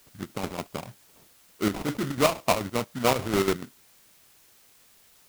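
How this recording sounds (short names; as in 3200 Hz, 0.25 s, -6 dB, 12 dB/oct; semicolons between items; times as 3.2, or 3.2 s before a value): aliases and images of a low sample rate 1700 Hz, jitter 20%; chopped level 6.9 Hz, depth 60%, duty 60%; a quantiser's noise floor 10-bit, dither triangular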